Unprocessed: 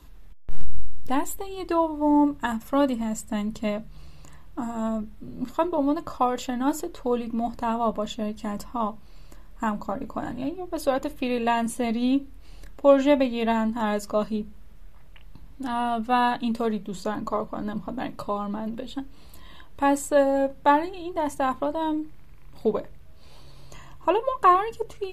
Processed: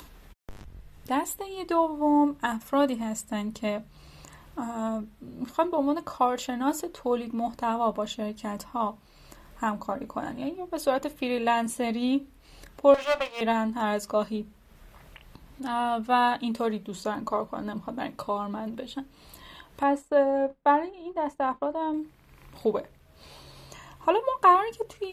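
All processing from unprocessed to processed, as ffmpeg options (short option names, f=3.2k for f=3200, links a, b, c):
-filter_complex "[0:a]asettb=1/sr,asplit=3[a][b][c];[a]atrim=end=12.944[d];[b]atrim=start=12.94:end=13.41,asetpts=PTS-STARTPTS,afade=t=in:d=0.004:c=qsin,afade=t=out:st=0.466:d=0.004:c=qsin,highpass=f=400:w=0.5412,highpass=f=400:w=1.3066,equalizer=f=730:t=q:w=4:g=9,equalizer=f=1.1k:t=q:w=4:g=4,equalizer=f=2.6k:t=q:w=4:g=7,lowpass=f=6.3k:w=0.5412,lowpass=f=6.3k:w=1.3066,aeval=exprs='max(val(0),0)':c=same[e];[c]atrim=start=13.406[f];[d][e]acrossfade=d=0.004:c1=hsin:c2=qsin[g];[g][f]acrossfade=d=0.004:c1=qsin:c2=hsin,asettb=1/sr,asplit=3[h][i][j];[h]atrim=end=19.834[k];[i]atrim=start=19.83:end=21.94,asetpts=PTS-STARTPTS,afade=t=in:d=0.004:c=qsin,afade=t=out:st=2.106:d=0.004:c=qsin,lowpass=f=1.4k:p=1,agate=range=-33dB:threshold=-33dB:ratio=3:release=100:detection=peak,equalizer=f=100:t=o:w=0.89:g=-13[l];[j]atrim=start=21.936[m];[k][l]acrossfade=d=0.004:c1=hsin:c2=qsin[n];[n][m]acrossfade=d=0.004:c1=qsin:c2=hsin,highpass=f=46:p=1,lowshelf=f=250:g=-6,acompressor=mode=upward:threshold=-41dB:ratio=2.5"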